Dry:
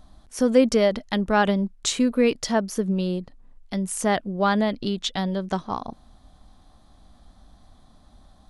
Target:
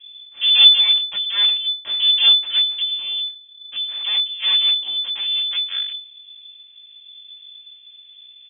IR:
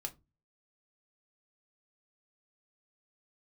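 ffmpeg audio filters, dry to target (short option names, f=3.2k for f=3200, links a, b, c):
-af "aecho=1:1:3.8:0.76,flanger=delay=16.5:depth=6.1:speed=0.74,aeval=exprs='abs(val(0))':c=same,lowshelf=f=290:g=11.5,lowpass=f=3k:t=q:w=0.5098,lowpass=f=3k:t=q:w=0.6013,lowpass=f=3k:t=q:w=0.9,lowpass=f=3k:t=q:w=2.563,afreqshift=-3500,volume=-5dB"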